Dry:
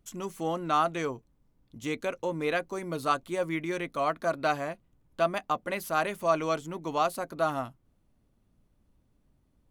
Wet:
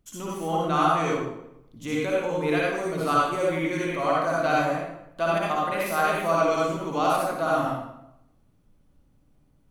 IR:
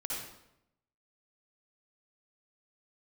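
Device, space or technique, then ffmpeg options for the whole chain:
bathroom: -filter_complex "[1:a]atrim=start_sample=2205[a];[0:a][a]afir=irnorm=-1:irlink=0,volume=3dB"

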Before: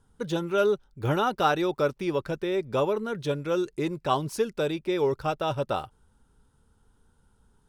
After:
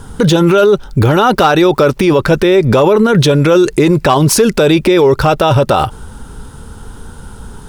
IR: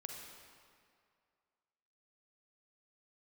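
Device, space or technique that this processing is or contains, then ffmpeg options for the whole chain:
loud club master: -af "acompressor=threshold=-29dB:ratio=2.5,asoftclip=type=hard:threshold=-22dB,alimiter=level_in=34dB:limit=-1dB:release=50:level=0:latency=1,volume=-1dB"

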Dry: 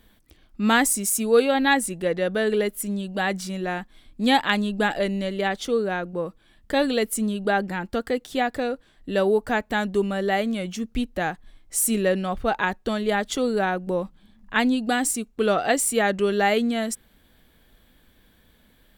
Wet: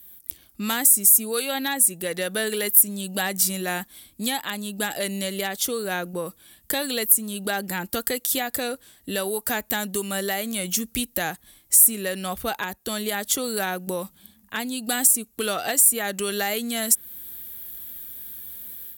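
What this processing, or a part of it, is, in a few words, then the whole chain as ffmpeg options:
FM broadcast chain: -filter_complex "[0:a]highpass=f=45:w=0.5412,highpass=f=45:w=1.3066,dynaudnorm=f=180:g=3:m=10dB,acrossover=split=940|2000[a][b][c];[a]acompressor=threshold=-19dB:ratio=4[d];[b]acompressor=threshold=-23dB:ratio=4[e];[c]acompressor=threshold=-26dB:ratio=4[f];[d][e][f]amix=inputs=3:normalize=0,aemphasis=mode=production:type=50fm,alimiter=limit=-7dB:level=0:latency=1:release=335,asoftclip=type=hard:threshold=-9dB,lowpass=f=15k:w=0.5412,lowpass=f=15k:w=1.3066,aemphasis=mode=production:type=50fm,volume=-7.5dB"

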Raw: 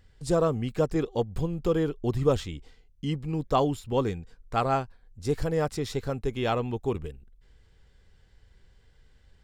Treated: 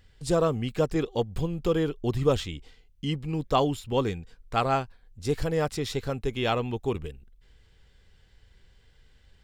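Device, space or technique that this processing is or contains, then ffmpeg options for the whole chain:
presence and air boost: -af "equalizer=f=3k:t=o:w=1.3:g=5,highshelf=f=9.5k:g=3.5"

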